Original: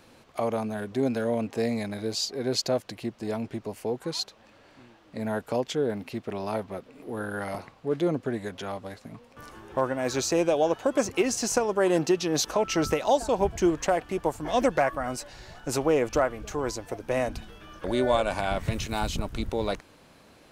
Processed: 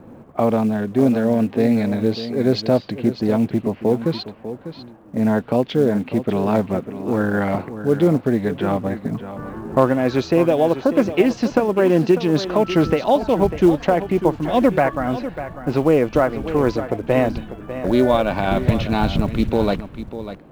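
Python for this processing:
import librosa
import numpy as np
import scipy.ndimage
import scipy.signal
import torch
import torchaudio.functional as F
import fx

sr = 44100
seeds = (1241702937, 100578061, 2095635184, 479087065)

p1 = scipy.signal.sosfilt(scipy.signal.butter(4, 4100.0, 'lowpass', fs=sr, output='sos'), x)
p2 = fx.env_lowpass(p1, sr, base_hz=950.0, full_db=-23.0)
p3 = fx.peak_eq(p2, sr, hz=190.0, db=8.5, octaves=2.0)
p4 = fx.rider(p3, sr, range_db=10, speed_s=0.5)
p5 = p3 + (p4 * librosa.db_to_amplitude(1.5))
p6 = fx.quant_float(p5, sr, bits=4)
p7 = p6 + fx.echo_single(p6, sr, ms=597, db=-12.0, dry=0)
p8 = fx.doppler_dist(p7, sr, depth_ms=0.18)
y = p8 * librosa.db_to_amplitude(-1.5)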